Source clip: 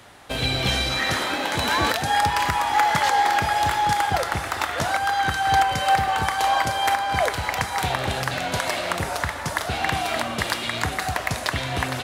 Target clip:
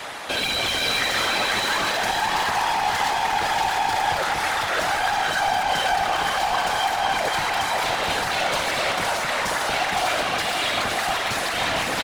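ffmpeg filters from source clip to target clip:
-filter_complex "[0:a]asplit=2[a][b];[b]highpass=f=720:p=1,volume=27dB,asoftclip=type=tanh:threshold=-6dB[c];[a][c]amix=inputs=2:normalize=0,lowpass=f=5.9k:p=1,volume=-6dB,alimiter=limit=-15dB:level=0:latency=1:release=371,afftfilt=real='hypot(re,im)*cos(2*PI*random(0))':imag='hypot(re,im)*sin(2*PI*random(1))':win_size=512:overlap=0.75,asplit=2[d][e];[e]aecho=0:1:515:0.562[f];[d][f]amix=inputs=2:normalize=0,volume=1.5dB"

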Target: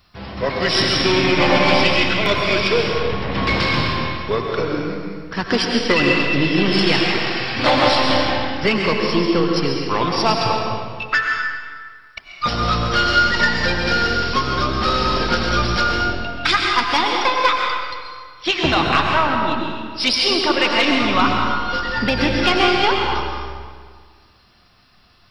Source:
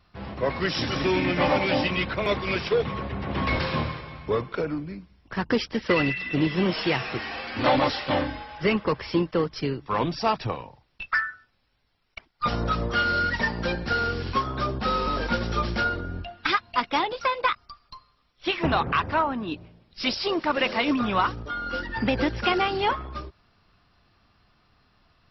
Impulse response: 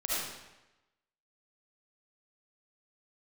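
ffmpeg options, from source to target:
-filter_complex "[0:a]aeval=exprs='0.355*(cos(1*acos(clip(val(0)/0.355,-1,1)))-cos(1*PI/2))+0.0355*(cos(2*acos(clip(val(0)/0.355,-1,1)))-cos(2*PI/2))+0.00794*(cos(6*acos(clip(val(0)/0.355,-1,1)))-cos(6*PI/2))+0.00251*(cos(8*acos(clip(val(0)/0.355,-1,1)))-cos(8*PI/2))':c=same,asplit=2[a][b];[1:a]atrim=start_sample=2205,asetrate=24255,aresample=44100[c];[b][c]afir=irnorm=-1:irlink=0,volume=-8dB[d];[a][d]amix=inputs=2:normalize=0,crystalizer=i=3:c=0"

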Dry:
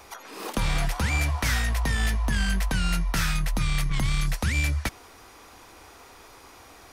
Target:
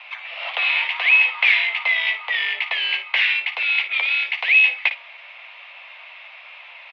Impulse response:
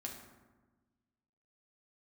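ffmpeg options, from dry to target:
-af "highshelf=f=1.6k:t=q:w=3:g=7.5,aecho=1:1:11|56:0.398|0.282,highpass=f=430:t=q:w=0.5412,highpass=f=430:t=q:w=1.307,lowpass=f=3.1k:t=q:w=0.5176,lowpass=f=3.1k:t=q:w=0.7071,lowpass=f=3.1k:t=q:w=1.932,afreqshift=220,volume=3.5dB"

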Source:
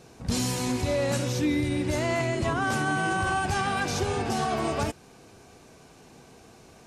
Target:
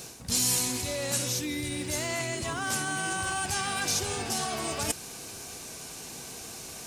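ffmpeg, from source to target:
-af "areverse,acompressor=threshold=-37dB:ratio=5,areverse,crystalizer=i=5.5:c=0,acrusher=bits=7:mode=log:mix=0:aa=0.000001,volume=3.5dB"

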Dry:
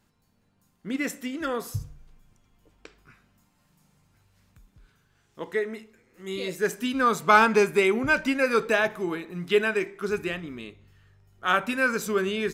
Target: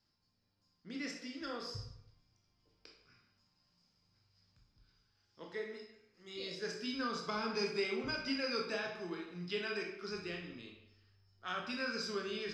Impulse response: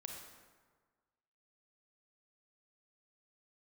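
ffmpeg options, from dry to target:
-filter_complex "[0:a]acrossover=split=460[a][b];[b]acompressor=threshold=-23dB:ratio=10[c];[a][c]amix=inputs=2:normalize=0,lowpass=f=5k:t=q:w=13[d];[1:a]atrim=start_sample=2205,asetrate=88200,aresample=44100[e];[d][e]afir=irnorm=-1:irlink=0,volume=-4.5dB"

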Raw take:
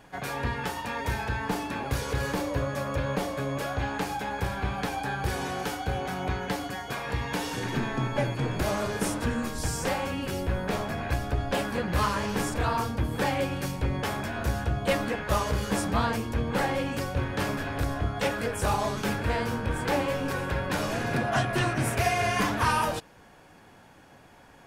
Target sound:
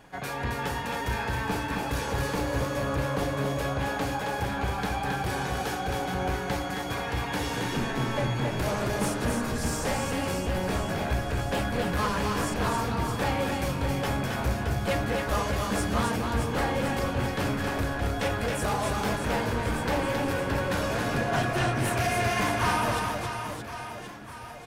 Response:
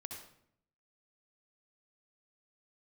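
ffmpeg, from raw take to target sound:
-af "asoftclip=type=tanh:threshold=-21dB,aecho=1:1:270|621|1077|1670|2442:0.631|0.398|0.251|0.158|0.1"

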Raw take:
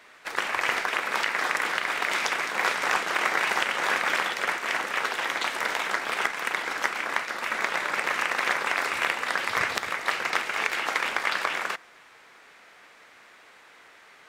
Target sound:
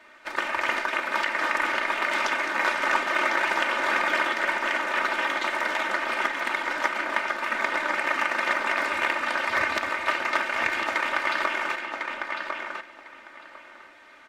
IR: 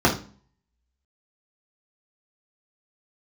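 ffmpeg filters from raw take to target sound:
-filter_complex "[0:a]highshelf=f=4.2k:g=-10.5,aecho=1:1:3.3:0.74,asplit=2[a][b];[b]adelay=1051,lowpass=f=4.4k:p=1,volume=-4.5dB,asplit=2[c][d];[d]adelay=1051,lowpass=f=4.4k:p=1,volume=0.18,asplit=2[e][f];[f]adelay=1051,lowpass=f=4.4k:p=1,volume=0.18[g];[a][c][e][g]amix=inputs=4:normalize=0"

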